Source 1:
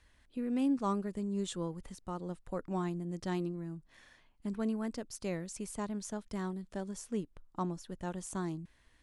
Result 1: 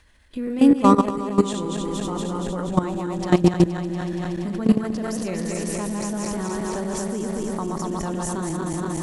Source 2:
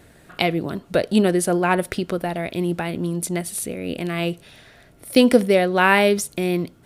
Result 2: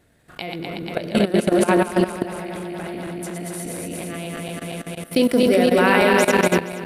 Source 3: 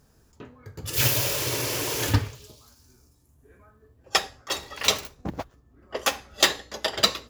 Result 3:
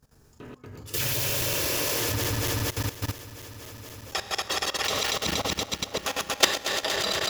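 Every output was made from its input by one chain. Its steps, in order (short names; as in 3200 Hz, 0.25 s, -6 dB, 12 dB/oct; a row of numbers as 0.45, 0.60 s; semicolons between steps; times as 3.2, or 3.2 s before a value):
regenerating reverse delay 0.118 s, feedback 85%, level -3 dB; Schroeder reverb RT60 1 s, combs from 28 ms, DRR 18 dB; level quantiser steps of 15 dB; normalise peaks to -2 dBFS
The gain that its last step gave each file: +18.5, 0.0, +3.0 dB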